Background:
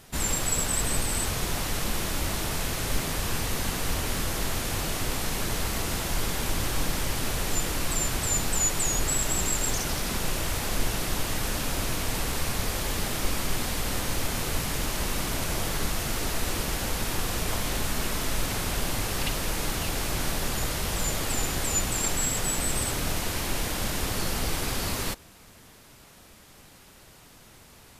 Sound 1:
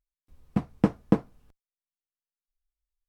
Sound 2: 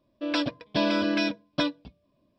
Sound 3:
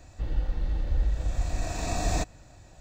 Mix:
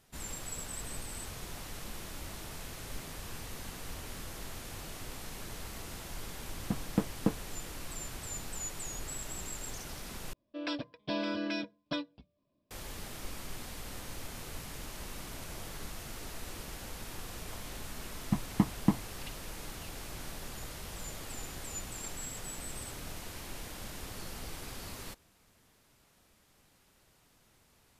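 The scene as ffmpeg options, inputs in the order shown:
ffmpeg -i bed.wav -i cue0.wav -i cue1.wav -filter_complex "[1:a]asplit=2[link_01][link_02];[0:a]volume=-14.5dB[link_03];[link_02]aecho=1:1:1:0.83[link_04];[link_03]asplit=2[link_05][link_06];[link_05]atrim=end=10.334[link_07];[2:a]atrim=end=2.38,asetpts=PTS-STARTPTS,volume=-9.5dB[link_08];[link_06]atrim=start=12.706[link_09];[link_01]atrim=end=3.08,asetpts=PTS-STARTPTS,volume=-8dB,afade=type=in:duration=0.004:curve=hsin,afade=type=out:start_time=3.076:duration=0.004:curve=hsin,adelay=6140[link_10];[link_04]atrim=end=3.08,asetpts=PTS-STARTPTS,volume=-7.5dB,afade=type=in:duration=0.004:curve=hsin,afade=type=out:start_time=3.076:duration=0.004:curve=hsin,adelay=17760[link_11];[link_07][link_08]acrossfade=duration=0.004:curve1=hsin:curve2=hsin[link_12];[link_12][link_09]acrossfade=duration=0.004:curve1=hsin:curve2=hsin[link_13];[link_13][link_10][link_11]amix=inputs=3:normalize=0" out.wav

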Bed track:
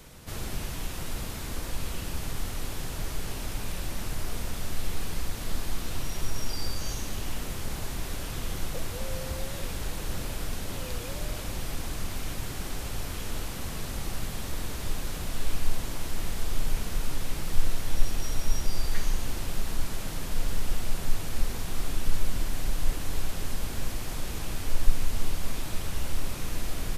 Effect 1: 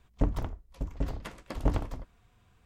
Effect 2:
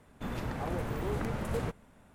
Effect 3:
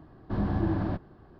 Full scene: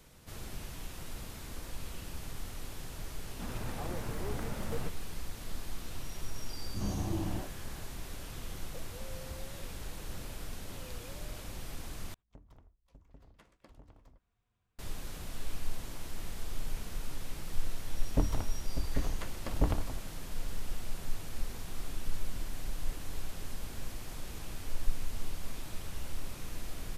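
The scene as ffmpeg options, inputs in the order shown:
ffmpeg -i bed.wav -i cue0.wav -i cue1.wav -i cue2.wav -filter_complex "[1:a]asplit=2[link_01][link_02];[0:a]volume=-9dB[link_03];[3:a]acrossover=split=300|1400[link_04][link_05][link_06];[link_05]adelay=60[link_07];[link_06]adelay=490[link_08];[link_04][link_07][link_08]amix=inputs=3:normalize=0[link_09];[link_01]acompressor=threshold=-35dB:ratio=8:attack=12:release=252:knee=6:detection=peak[link_10];[link_03]asplit=2[link_11][link_12];[link_11]atrim=end=12.144[link_13];[link_10]atrim=end=2.65,asetpts=PTS-STARTPTS,volume=-17.5dB[link_14];[link_12]atrim=start=14.786[link_15];[2:a]atrim=end=2.14,asetpts=PTS-STARTPTS,volume=-5.5dB,afade=type=in:duration=0.004:curve=hsin,afade=type=out:start_time=2.136:duration=0.004:curve=hsin,adelay=3180[link_16];[link_09]atrim=end=1.39,asetpts=PTS-STARTPTS,volume=-6.5dB,afade=type=in:duration=0.004:curve=hsin,afade=type=out:start_time=1.386:duration=0.004:curve=hsin,adelay=6440[link_17];[link_02]atrim=end=2.65,asetpts=PTS-STARTPTS,volume=-2dB,afade=type=in:duration=0.004:curve=hsin,afade=type=out:start_time=2.646:duration=0.004:curve=hsin,adelay=792036S[link_18];[link_13][link_14]acrossfade=duration=0.004:curve1=hsin:curve2=hsin[link_19];[link_19][link_15]acrossfade=duration=0.004:curve1=hsin:curve2=hsin[link_20];[link_20][link_16][link_17][link_18]amix=inputs=4:normalize=0" out.wav

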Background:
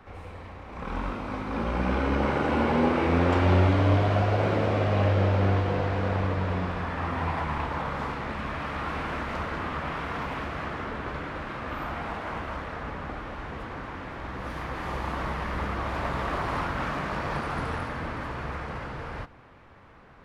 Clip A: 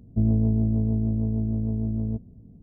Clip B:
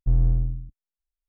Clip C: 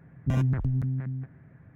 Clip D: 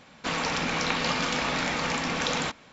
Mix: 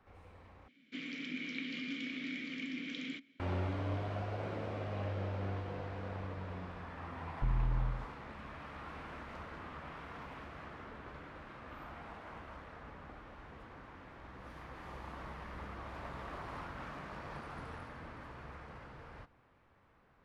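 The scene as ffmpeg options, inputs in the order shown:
ffmpeg -i bed.wav -i cue0.wav -i cue1.wav -i cue2.wav -i cue3.wav -filter_complex "[0:a]volume=-15.5dB[link_01];[4:a]asplit=3[link_02][link_03][link_04];[link_02]bandpass=frequency=270:width_type=q:width=8,volume=0dB[link_05];[link_03]bandpass=frequency=2290:width_type=q:width=8,volume=-6dB[link_06];[link_04]bandpass=frequency=3010:width_type=q:width=8,volume=-9dB[link_07];[link_05][link_06][link_07]amix=inputs=3:normalize=0[link_08];[2:a]acompressor=threshold=-22dB:ratio=6:attack=3.2:release=140:knee=1:detection=peak[link_09];[link_01]asplit=2[link_10][link_11];[link_10]atrim=end=0.684[link_12];[link_08]atrim=end=2.72,asetpts=PTS-STARTPTS,volume=-2.5dB[link_13];[link_11]atrim=start=3.396[link_14];[link_09]atrim=end=1.28,asetpts=PTS-STARTPTS,volume=-5.5dB,afade=type=in:duration=0.004:curve=hsin,afade=type=out:start_time=1.276:duration=0.004:curve=hsin,adelay=7360[link_15];[link_12][link_13]acrossfade=duration=0.004:curve1=hsin:curve2=hsin[link_16];[link_16][link_14]acrossfade=duration=0.004:curve1=hsin:curve2=hsin[link_17];[link_17][link_15]amix=inputs=2:normalize=0" out.wav

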